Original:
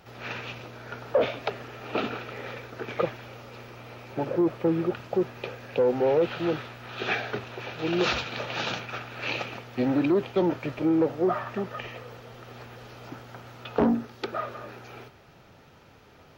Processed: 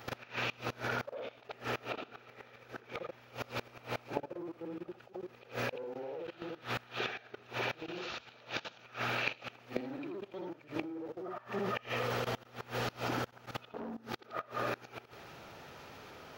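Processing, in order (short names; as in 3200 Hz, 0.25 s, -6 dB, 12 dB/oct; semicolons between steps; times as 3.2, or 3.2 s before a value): short-time reversal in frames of 0.166 s; low shelf 200 Hz -10.5 dB; level quantiser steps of 17 dB; flipped gate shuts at -40 dBFS, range -24 dB; gain +16.5 dB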